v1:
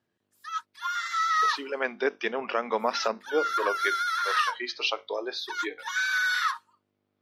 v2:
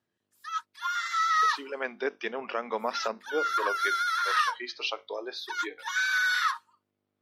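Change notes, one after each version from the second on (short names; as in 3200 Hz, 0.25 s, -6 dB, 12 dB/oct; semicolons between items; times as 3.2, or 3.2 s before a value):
speech -4.0 dB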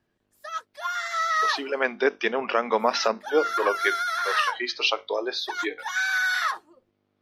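speech +8.5 dB; background: remove rippled Chebyshev high-pass 910 Hz, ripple 3 dB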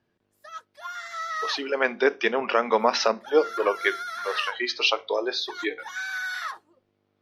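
background -7.5 dB; reverb: on, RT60 0.30 s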